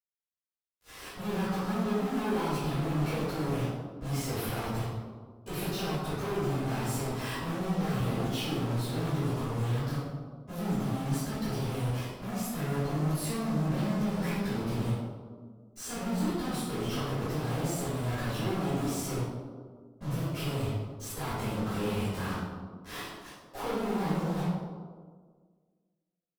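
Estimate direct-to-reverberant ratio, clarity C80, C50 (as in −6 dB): −17.5 dB, 0.5 dB, −3.0 dB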